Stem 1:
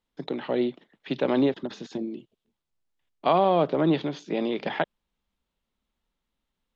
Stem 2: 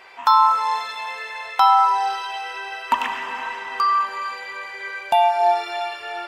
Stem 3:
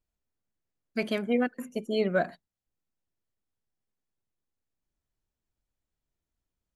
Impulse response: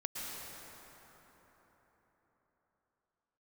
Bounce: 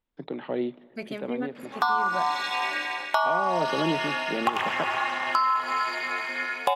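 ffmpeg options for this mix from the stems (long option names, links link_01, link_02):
-filter_complex "[0:a]lowpass=3000,volume=-3.5dB,asplit=2[link_01][link_02];[link_02]volume=-24dB[link_03];[1:a]aeval=exprs='val(0)*sin(2*PI*140*n/s)':channel_layout=same,highpass=120,dynaudnorm=framelen=120:gausssize=5:maxgain=9dB,adelay=1550,volume=-3dB[link_04];[2:a]volume=-7dB,asplit=3[link_05][link_06][link_07];[link_06]volume=-20.5dB[link_08];[link_07]apad=whole_len=297984[link_09];[link_01][link_09]sidechaincompress=threshold=-38dB:ratio=8:attack=8:release=492[link_10];[3:a]atrim=start_sample=2205[link_11];[link_03][link_08]amix=inputs=2:normalize=0[link_12];[link_12][link_11]afir=irnorm=-1:irlink=0[link_13];[link_10][link_04][link_05][link_13]amix=inputs=4:normalize=0,acompressor=threshold=-20dB:ratio=6"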